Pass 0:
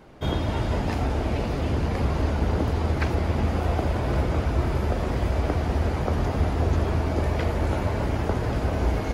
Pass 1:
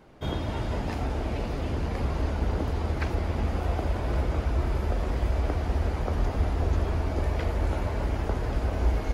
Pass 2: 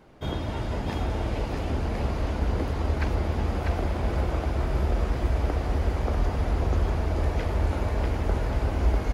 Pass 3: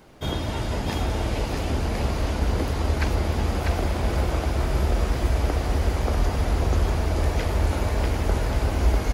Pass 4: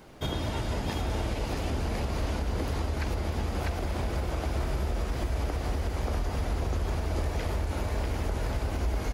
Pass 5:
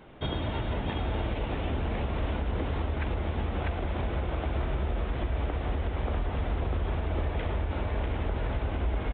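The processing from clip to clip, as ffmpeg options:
-af "asubboost=boost=4:cutoff=53,volume=0.596"
-af "aecho=1:1:646:0.631"
-af "highshelf=f=3900:g=10.5,volume=1.33"
-af "alimiter=limit=0.0891:level=0:latency=1:release=257"
-af "aresample=8000,aresample=44100"

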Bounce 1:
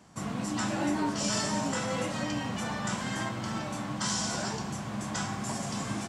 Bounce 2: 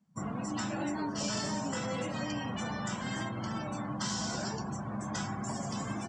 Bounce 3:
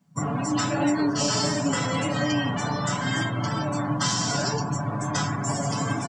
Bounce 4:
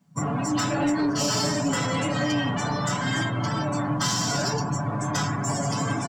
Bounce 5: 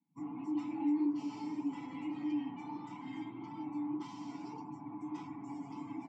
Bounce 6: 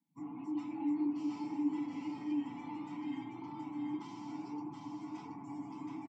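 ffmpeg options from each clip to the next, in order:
-filter_complex "[0:a]afftdn=nr=26:nf=-42,acrossover=split=520|2900|7200[s0][s1][s2][s3];[s0]acompressor=threshold=0.02:ratio=4[s4];[s1]acompressor=threshold=0.0112:ratio=4[s5];[s2]acompressor=threshold=0.0141:ratio=4[s6];[s3]acompressor=threshold=0.00178:ratio=4[s7];[s4][s5][s6][s7]amix=inputs=4:normalize=0"
-af "aecho=1:1:7:0.87,volume=2.51"
-af "asoftclip=type=tanh:threshold=0.119,volume=1.19"
-filter_complex "[0:a]asplit=3[s0][s1][s2];[s0]bandpass=f=300:t=q:w=8,volume=1[s3];[s1]bandpass=f=870:t=q:w=8,volume=0.501[s4];[s2]bandpass=f=2240:t=q:w=8,volume=0.355[s5];[s3][s4][s5]amix=inputs=3:normalize=0,flanger=delay=1.1:depth=9.8:regen=-62:speed=1.7:shape=sinusoidal,volume=0.75"
-af "aecho=1:1:725:0.668,volume=0.794"

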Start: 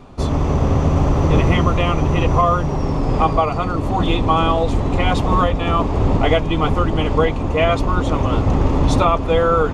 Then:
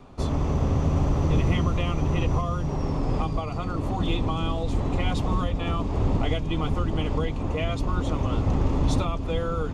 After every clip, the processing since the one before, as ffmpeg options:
-filter_complex "[0:a]acrossover=split=300|3000[s0][s1][s2];[s1]acompressor=threshold=0.0631:ratio=6[s3];[s0][s3][s2]amix=inputs=3:normalize=0,volume=0.473"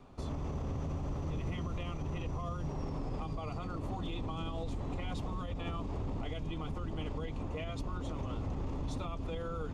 -af "alimiter=limit=0.0841:level=0:latency=1:release=62,volume=0.398"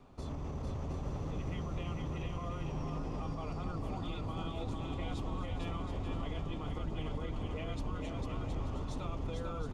-af "aecho=1:1:450|720|882|979.2|1038:0.631|0.398|0.251|0.158|0.1,volume=0.75"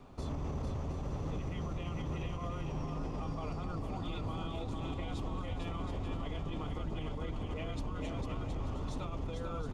-af "alimiter=level_in=2.99:limit=0.0631:level=0:latency=1:release=112,volume=0.335,volume=1.58"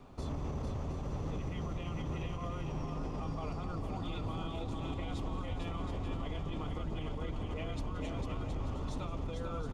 -af "aecho=1:1:173:0.158"

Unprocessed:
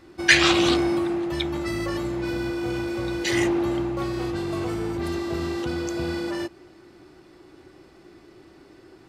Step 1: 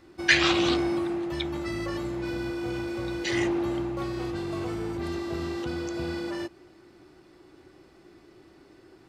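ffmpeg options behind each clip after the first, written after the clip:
-filter_complex "[0:a]acrossover=split=7100[s0][s1];[s1]acompressor=threshold=0.00224:ratio=4:attack=1:release=60[s2];[s0][s2]amix=inputs=2:normalize=0,volume=0.631"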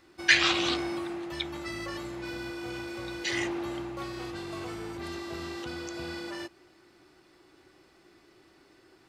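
-af "tiltshelf=f=720:g=-4.5,volume=0.631"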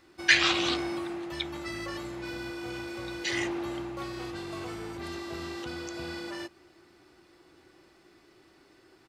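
-filter_complex "[0:a]asplit=2[s0][s1];[s1]adelay=1458,volume=0.0398,highshelf=f=4000:g=-32.8[s2];[s0][s2]amix=inputs=2:normalize=0"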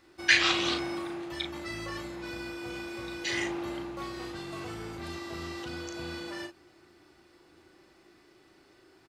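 -filter_complex "[0:a]asplit=2[s0][s1];[s1]adelay=37,volume=0.501[s2];[s0][s2]amix=inputs=2:normalize=0,volume=0.841"

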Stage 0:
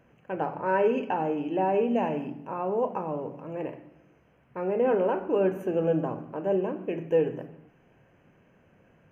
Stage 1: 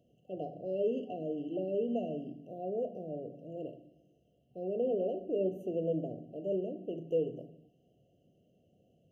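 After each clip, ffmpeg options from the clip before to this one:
-af "highpass=60,afftfilt=real='re*(1-between(b*sr/4096,750,2700))':imag='im*(1-between(b*sr/4096,750,2700))':win_size=4096:overlap=0.75,adynamicequalizer=threshold=0.00355:dfrequency=2800:dqfactor=0.7:tfrequency=2800:tqfactor=0.7:attack=5:release=100:ratio=0.375:range=2.5:mode=cutabove:tftype=highshelf,volume=0.422"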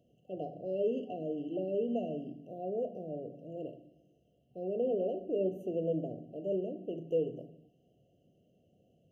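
-af anull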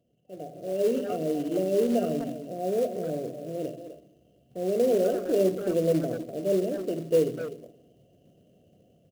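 -filter_complex "[0:a]asplit=2[s0][s1];[s1]adelay=250,highpass=300,lowpass=3400,asoftclip=type=hard:threshold=0.0282,volume=0.355[s2];[s0][s2]amix=inputs=2:normalize=0,acrusher=bits=5:mode=log:mix=0:aa=0.000001,dynaudnorm=f=290:g=5:m=3.76,volume=0.708"

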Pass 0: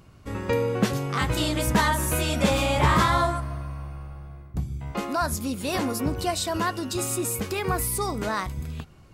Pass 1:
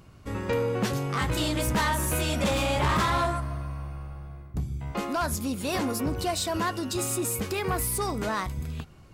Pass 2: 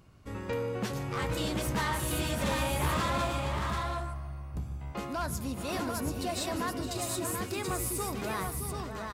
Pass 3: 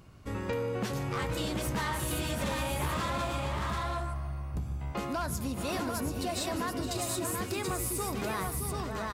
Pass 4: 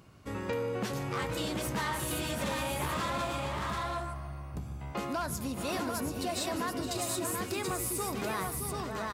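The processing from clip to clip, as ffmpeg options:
-af "asoftclip=type=tanh:threshold=0.1"
-af "aecho=1:1:148|465|620|734:0.112|0.188|0.376|0.596,volume=0.473"
-af "acompressor=threshold=0.02:ratio=4,volume=1.58"
-af "highpass=f=120:p=1"

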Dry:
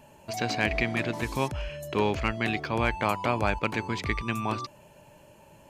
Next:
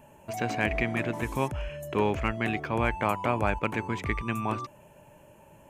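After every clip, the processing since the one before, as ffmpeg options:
-af "equalizer=f=4500:w=1.8:g=-13.5"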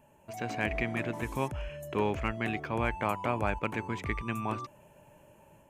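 -af "dynaudnorm=f=310:g=3:m=1.68,volume=0.398"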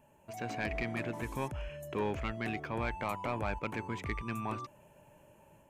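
-af "asoftclip=type=tanh:threshold=0.0841,volume=0.75"

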